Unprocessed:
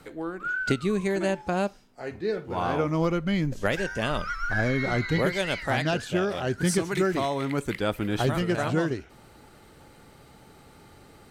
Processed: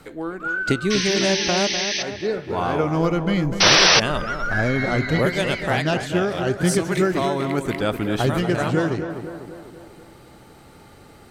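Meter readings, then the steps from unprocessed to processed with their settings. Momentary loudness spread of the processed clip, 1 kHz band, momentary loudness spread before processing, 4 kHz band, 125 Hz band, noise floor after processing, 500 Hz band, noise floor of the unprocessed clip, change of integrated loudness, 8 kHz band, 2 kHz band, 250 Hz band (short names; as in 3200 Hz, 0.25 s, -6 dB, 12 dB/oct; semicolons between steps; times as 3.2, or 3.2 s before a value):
10 LU, +6.0 dB, 5 LU, +15.5 dB, +5.0 dB, -47 dBFS, +5.0 dB, -53 dBFS, +7.0 dB, +14.0 dB, +7.0 dB, +5.0 dB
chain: painted sound noise, 0.9–2.03, 1600–6300 Hz -29 dBFS; on a send: tape echo 0.248 s, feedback 63%, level -7 dB, low-pass 1700 Hz; on the sum: painted sound noise, 3.6–4, 300–6100 Hz -18 dBFS; gain +4 dB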